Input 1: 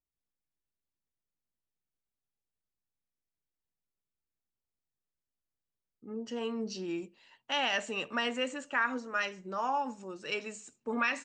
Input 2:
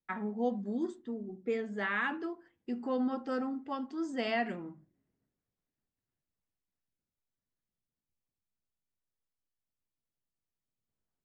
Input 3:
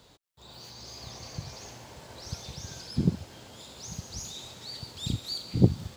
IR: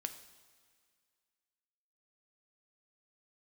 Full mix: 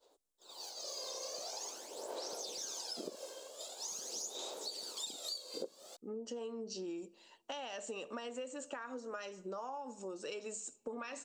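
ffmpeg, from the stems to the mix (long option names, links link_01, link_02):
-filter_complex "[0:a]volume=1dB,asplit=2[link_01][link_02];[link_02]volume=-22dB[link_03];[2:a]aphaser=in_gain=1:out_gain=1:delay=1.9:decay=0.57:speed=0.45:type=sinusoidal,agate=range=-33dB:threshold=-41dB:ratio=3:detection=peak,highpass=frequency=340:width=0.5412,highpass=frequency=340:width=1.3066,volume=0dB[link_04];[link_01]acompressor=threshold=-41dB:ratio=2,volume=0dB[link_05];[3:a]atrim=start_sample=2205[link_06];[link_03][link_06]afir=irnorm=-1:irlink=0[link_07];[link_04][link_05][link_07]amix=inputs=3:normalize=0,equalizer=frequency=125:width_type=o:width=1:gain=-11,equalizer=frequency=500:width_type=o:width=1:gain=6,equalizer=frequency=2000:width_type=o:width=1:gain=-9,equalizer=frequency=8000:width_type=o:width=1:gain=7,acompressor=threshold=-39dB:ratio=16"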